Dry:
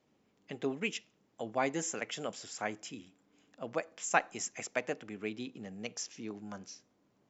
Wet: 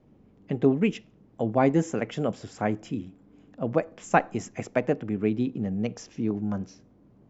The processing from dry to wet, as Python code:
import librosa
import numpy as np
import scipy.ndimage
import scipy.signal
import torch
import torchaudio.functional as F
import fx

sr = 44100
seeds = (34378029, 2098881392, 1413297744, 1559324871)

y = fx.tilt_eq(x, sr, slope=-4.5)
y = y * librosa.db_to_amplitude(6.5)